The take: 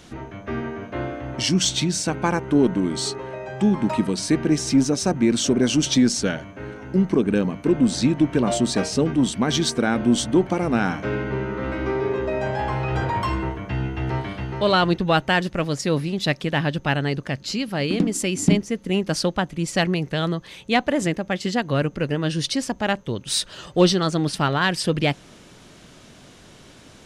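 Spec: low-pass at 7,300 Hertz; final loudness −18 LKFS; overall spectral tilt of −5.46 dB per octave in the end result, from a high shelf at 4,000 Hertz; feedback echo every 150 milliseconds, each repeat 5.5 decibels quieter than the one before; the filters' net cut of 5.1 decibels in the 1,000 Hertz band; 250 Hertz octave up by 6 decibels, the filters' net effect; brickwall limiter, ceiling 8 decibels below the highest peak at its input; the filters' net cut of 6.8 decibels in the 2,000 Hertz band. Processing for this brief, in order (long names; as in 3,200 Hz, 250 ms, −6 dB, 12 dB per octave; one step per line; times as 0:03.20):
low-pass filter 7,300 Hz
parametric band 250 Hz +8 dB
parametric band 1,000 Hz −6 dB
parametric band 2,000 Hz −8.5 dB
high-shelf EQ 4,000 Hz +6 dB
brickwall limiter −6.5 dBFS
repeating echo 150 ms, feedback 53%, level −5.5 dB
level +0.5 dB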